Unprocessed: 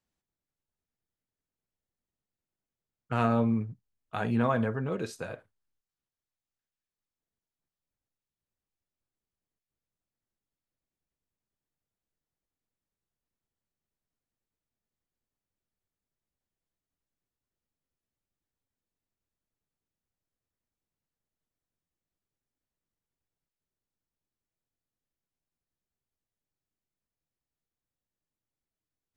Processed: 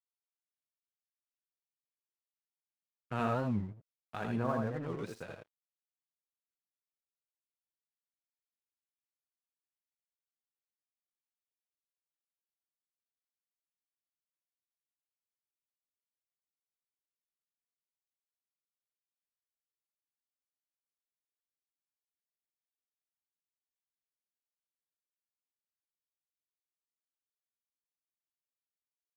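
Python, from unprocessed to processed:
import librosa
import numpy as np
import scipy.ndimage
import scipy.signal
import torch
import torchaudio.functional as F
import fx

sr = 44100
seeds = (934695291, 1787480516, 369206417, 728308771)

y = fx.lowpass(x, sr, hz=1500.0, slope=12, at=(4.36, 4.82))
y = np.sign(y) * np.maximum(np.abs(y) - 10.0 ** (-47.0 / 20.0), 0.0)
y = y + 10.0 ** (-4.5 / 20.0) * np.pad(y, (int(80 * sr / 1000.0), 0))[:len(y)]
y = fx.record_warp(y, sr, rpm=45.0, depth_cents=250.0)
y = y * librosa.db_to_amplitude(-6.5)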